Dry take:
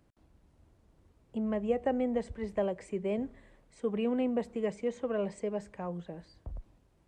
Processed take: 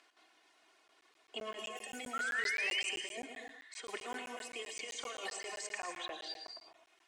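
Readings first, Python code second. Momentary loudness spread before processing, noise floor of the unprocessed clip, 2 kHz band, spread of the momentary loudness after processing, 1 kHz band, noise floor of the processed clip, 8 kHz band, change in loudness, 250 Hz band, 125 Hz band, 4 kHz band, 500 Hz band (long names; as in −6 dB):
15 LU, −68 dBFS, +11.5 dB, 14 LU, −2.5 dB, −70 dBFS, can't be measured, −5.5 dB, −20.5 dB, below −25 dB, +14.0 dB, −14.5 dB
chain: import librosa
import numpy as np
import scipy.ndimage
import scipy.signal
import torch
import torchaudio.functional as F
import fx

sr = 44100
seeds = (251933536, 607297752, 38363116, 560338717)

p1 = scipy.signal.sosfilt(scipy.signal.butter(2, 370.0, 'highpass', fs=sr, output='sos'), x)
p2 = fx.env_lowpass(p1, sr, base_hz=2100.0, full_db=-27.5)
p3 = np.diff(p2, prepend=0.0)
p4 = fx.dereverb_blind(p3, sr, rt60_s=0.92)
p5 = fx.high_shelf(p4, sr, hz=2100.0, db=11.0)
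p6 = p5 + 0.6 * np.pad(p5, (int(2.8 * sr / 1000.0), 0))[:len(p5)]
p7 = fx.over_compress(p6, sr, threshold_db=-60.0, ratio=-1.0)
p8 = fx.spec_paint(p7, sr, seeds[0], shape='rise', start_s=2.13, length_s=0.69, low_hz=1300.0, high_hz=3200.0, level_db=-52.0)
p9 = p8 + fx.echo_single(p8, sr, ms=112, db=-10.5, dry=0)
p10 = fx.rev_gated(p9, sr, seeds[1], gate_ms=280, shape='rising', drr_db=4.5)
p11 = fx.buffer_crackle(p10, sr, first_s=0.88, period_s=0.13, block=512, kind='zero')
y = p11 * librosa.db_to_amplitude(15.0)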